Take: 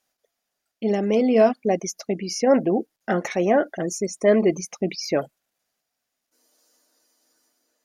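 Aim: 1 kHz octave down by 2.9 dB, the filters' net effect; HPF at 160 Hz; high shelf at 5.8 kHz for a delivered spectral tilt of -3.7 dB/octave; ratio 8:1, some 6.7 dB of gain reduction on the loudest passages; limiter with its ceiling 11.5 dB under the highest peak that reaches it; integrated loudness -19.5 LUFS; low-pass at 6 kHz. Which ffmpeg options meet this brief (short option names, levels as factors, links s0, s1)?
-af "highpass=160,lowpass=6000,equalizer=f=1000:t=o:g=-5,highshelf=f=5800:g=8,acompressor=threshold=0.112:ratio=8,volume=4.47,alimiter=limit=0.299:level=0:latency=1"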